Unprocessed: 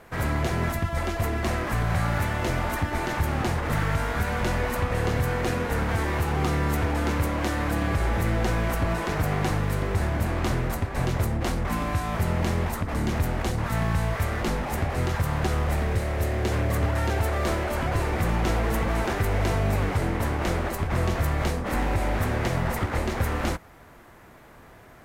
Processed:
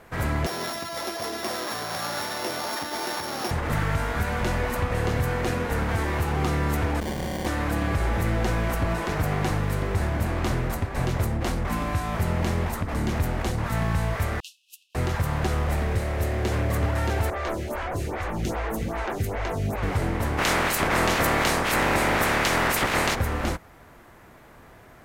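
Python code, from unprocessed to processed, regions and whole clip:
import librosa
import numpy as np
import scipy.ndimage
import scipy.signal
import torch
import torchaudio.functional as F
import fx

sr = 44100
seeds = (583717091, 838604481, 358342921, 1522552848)

y = fx.chain(x, sr, fx.sample_sort(block=8),
    fx.highpass(hz=340.0, slope=12), at=(0.46, 3.51))
y = fx.chain(y, sr, fx.comb(ms=5.3, depth=0.86),
    fx.sample_hold(seeds[0], rate_hz=1300.0, jitter_pct=0),
    fx.tube_stage(drive_db=23.0, bias=0.55), at=(7.0, 7.46))
y = fx.chain(y, sr, fx.cheby1_highpass(hz=2600.0, order=10),
    fx.high_shelf(hz=8600.0, db=-5.0),
    fx.upward_expand(threshold_db=-50.0, expansion=2.5), at=(14.4, 14.95))
y = fx.chain(y, sr, fx.peak_eq(hz=6400.0, db=3.5, octaves=0.24),
    fx.stagger_phaser(hz=2.5), at=(17.3, 19.83))
y = fx.spec_clip(y, sr, under_db=21, at=(20.37, 23.14), fade=0.02)
y = fx.env_flatten(y, sr, amount_pct=50, at=(20.37, 23.14), fade=0.02)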